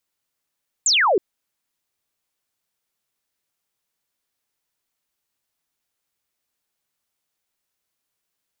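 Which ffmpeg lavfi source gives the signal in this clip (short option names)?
-f lavfi -i "aevalsrc='0.2*clip(t/0.002,0,1)*clip((0.32-t)/0.002,0,1)*sin(2*PI*7900*0.32/log(340/7900)*(exp(log(340/7900)*t/0.32)-1))':d=0.32:s=44100"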